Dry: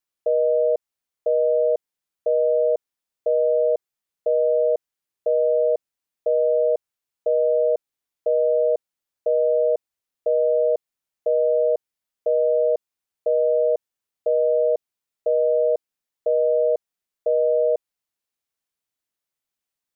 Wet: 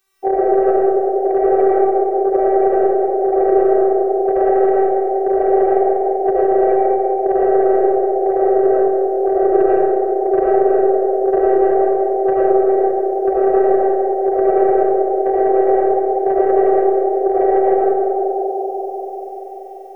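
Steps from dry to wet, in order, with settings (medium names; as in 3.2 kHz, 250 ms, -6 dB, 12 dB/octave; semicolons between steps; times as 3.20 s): phase randomisation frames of 50 ms; thinning echo 193 ms, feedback 82%, high-pass 330 Hz, level -5 dB; in parallel at +1.5 dB: compression 5:1, threshold -27 dBFS, peak gain reduction 13.5 dB; on the sum: robot voice 387 Hz; saturation -11 dBFS, distortion -23 dB; reverberation RT60 0.90 s, pre-delay 50 ms, DRR -5.5 dB; three bands compressed up and down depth 40%; trim +4.5 dB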